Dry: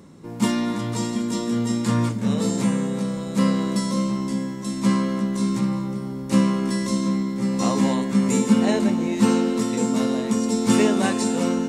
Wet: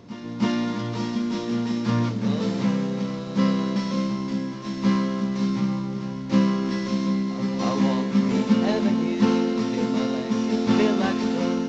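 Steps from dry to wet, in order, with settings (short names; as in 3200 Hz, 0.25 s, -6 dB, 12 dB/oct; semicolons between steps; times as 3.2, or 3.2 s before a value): CVSD 32 kbps; reverse echo 0.316 s -14 dB; gain -1.5 dB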